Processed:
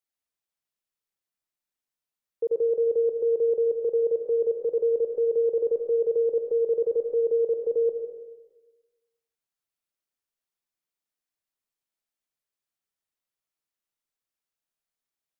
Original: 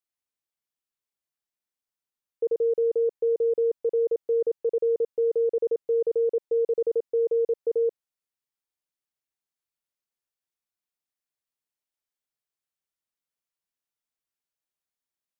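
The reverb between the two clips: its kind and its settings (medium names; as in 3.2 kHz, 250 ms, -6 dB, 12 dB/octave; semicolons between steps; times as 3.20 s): algorithmic reverb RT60 1.2 s, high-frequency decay 0.55×, pre-delay 65 ms, DRR 4 dB; trim -1 dB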